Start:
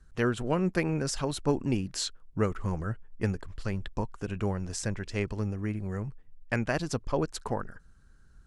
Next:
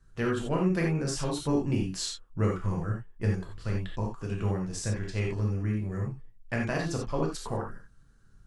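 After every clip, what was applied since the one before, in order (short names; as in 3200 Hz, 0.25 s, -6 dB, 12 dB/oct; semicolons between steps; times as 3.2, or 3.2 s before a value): non-linear reverb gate 0.11 s flat, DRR -1.5 dB; gain -4.5 dB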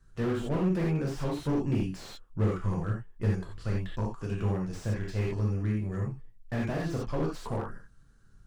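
slew limiter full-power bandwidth 20 Hz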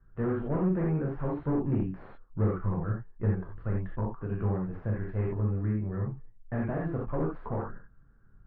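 LPF 1700 Hz 24 dB/oct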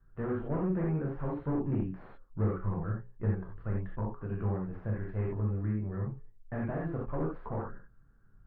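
notches 60/120/180/240/300/360/420/480/540 Hz; gain -2.5 dB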